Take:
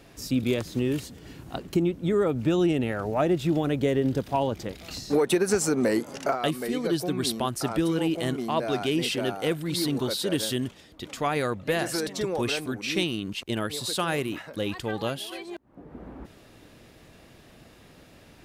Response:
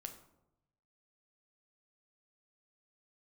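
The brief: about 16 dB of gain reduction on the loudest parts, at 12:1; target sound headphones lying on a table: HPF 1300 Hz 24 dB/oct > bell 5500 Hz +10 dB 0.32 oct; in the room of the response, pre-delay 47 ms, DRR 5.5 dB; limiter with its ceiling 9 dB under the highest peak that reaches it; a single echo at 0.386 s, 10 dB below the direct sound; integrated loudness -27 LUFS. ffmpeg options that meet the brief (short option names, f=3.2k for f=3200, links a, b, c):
-filter_complex "[0:a]acompressor=threshold=-35dB:ratio=12,alimiter=level_in=8dB:limit=-24dB:level=0:latency=1,volume=-8dB,aecho=1:1:386:0.316,asplit=2[a][b];[1:a]atrim=start_sample=2205,adelay=47[c];[b][c]afir=irnorm=-1:irlink=0,volume=-1.5dB[d];[a][d]amix=inputs=2:normalize=0,highpass=f=1.3k:w=0.5412,highpass=f=1.3k:w=1.3066,equalizer=f=5.5k:t=o:w=0.32:g=10,volume=16.5dB"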